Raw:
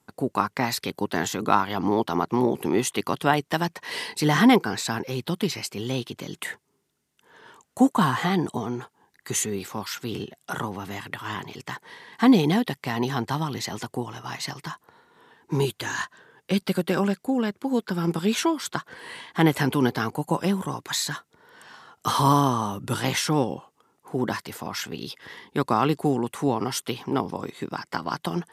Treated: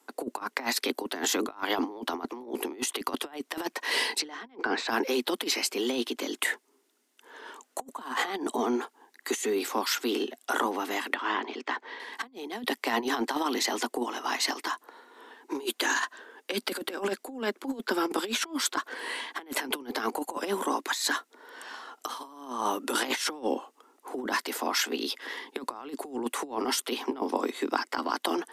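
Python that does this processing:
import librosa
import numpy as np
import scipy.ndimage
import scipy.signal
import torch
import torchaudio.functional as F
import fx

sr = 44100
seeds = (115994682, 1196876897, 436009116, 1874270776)

y = fx.lowpass(x, sr, hz=fx.line((4.18, 6600.0), (4.88, 2600.0)), slope=12, at=(4.18, 4.88), fade=0.02)
y = fx.air_absorb(y, sr, metres=170.0, at=(11.14, 12.0))
y = scipy.signal.sosfilt(scipy.signal.butter(12, 240.0, 'highpass', fs=sr, output='sos'), y)
y = fx.over_compress(y, sr, threshold_db=-30.0, ratio=-0.5)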